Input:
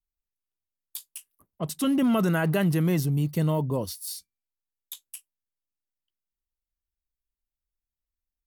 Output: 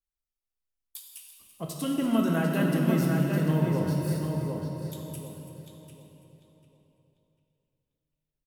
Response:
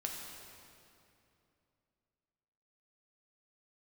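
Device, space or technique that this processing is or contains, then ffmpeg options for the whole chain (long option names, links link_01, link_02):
cave: -filter_complex "[0:a]asettb=1/sr,asplit=3[link_01][link_02][link_03];[link_01]atrim=end=3.834[link_04];[link_02]atrim=start=3.83:end=4.93,asetpts=PTS-STARTPTS,afade=type=in:duration=0.004:curve=qsin,afade=type=out:start_time=1.096:duration=0.004:curve=qsin,tiltshelf=frequency=970:gain=6[link_05];[link_03]atrim=start=4.926[link_06];[link_04][link_05]acrossfade=duration=0.004:curve1=hsin:curve2=qsin[link_07];[link_07][link_06]acrossfade=duration=0.004:curve1=qsin:curve2=hsin,aecho=1:1:336:0.2,asplit=2[link_08][link_09];[link_09]adelay=745,lowpass=frequency=3400:poles=1,volume=-4dB,asplit=2[link_10][link_11];[link_11]adelay=745,lowpass=frequency=3400:poles=1,volume=0.3,asplit=2[link_12][link_13];[link_13]adelay=745,lowpass=frequency=3400:poles=1,volume=0.3,asplit=2[link_14][link_15];[link_15]adelay=745,lowpass=frequency=3400:poles=1,volume=0.3[link_16];[link_08][link_10][link_12][link_14][link_16]amix=inputs=5:normalize=0[link_17];[1:a]atrim=start_sample=2205[link_18];[link_17][link_18]afir=irnorm=-1:irlink=0,volume=-3.5dB"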